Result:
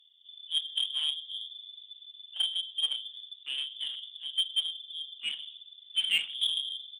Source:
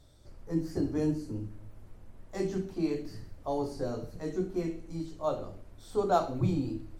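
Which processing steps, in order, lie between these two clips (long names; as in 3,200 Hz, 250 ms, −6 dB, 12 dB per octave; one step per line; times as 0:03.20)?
adaptive Wiener filter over 41 samples
parametric band 360 Hz +7.5 dB 0.32 octaves
double-tracking delay 41 ms −13.5 dB
voice inversion scrambler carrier 3,500 Hz
on a send: echo with shifted repeats 126 ms, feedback 44%, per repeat +120 Hz, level −24 dB
on the sum: harmonic generator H 3 −25 dB, 7 −26 dB, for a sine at −11.5 dBFS
in parallel at −3 dB: brickwall limiter −23 dBFS, peak gain reduction 11.5 dB
on the sum: high-pass filter sweep 850 Hz → 210 Hz, 0:02.03–0:04.10
level −4 dB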